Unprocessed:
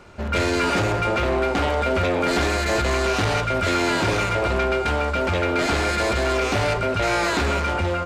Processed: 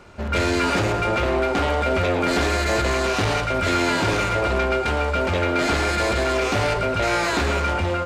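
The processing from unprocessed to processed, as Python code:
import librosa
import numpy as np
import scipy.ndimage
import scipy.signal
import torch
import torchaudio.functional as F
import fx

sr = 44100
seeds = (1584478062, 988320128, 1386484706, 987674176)

y = x + 10.0 ** (-11.5 / 20.0) * np.pad(x, (int(111 * sr / 1000.0), 0))[:len(x)]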